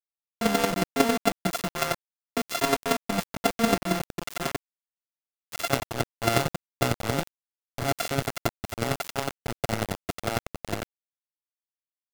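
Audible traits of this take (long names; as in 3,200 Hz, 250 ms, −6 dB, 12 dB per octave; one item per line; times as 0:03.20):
a buzz of ramps at a fixed pitch in blocks of 64 samples
chopped level 11 Hz, depth 65%, duty 15%
a quantiser's noise floor 6 bits, dither none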